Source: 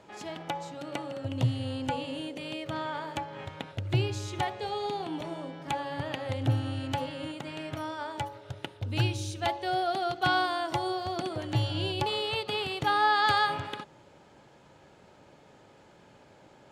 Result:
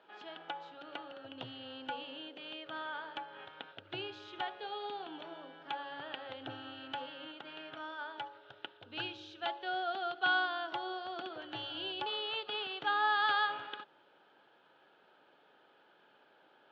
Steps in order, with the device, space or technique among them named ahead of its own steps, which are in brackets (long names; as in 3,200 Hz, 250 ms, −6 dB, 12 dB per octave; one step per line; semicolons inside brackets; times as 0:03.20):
phone earpiece (loudspeaker in its box 430–3,700 Hz, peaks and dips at 570 Hz −5 dB, 1,000 Hz −3 dB, 1,500 Hz +7 dB, 2,100 Hz −7 dB, 3,200 Hz +5 dB)
level −6 dB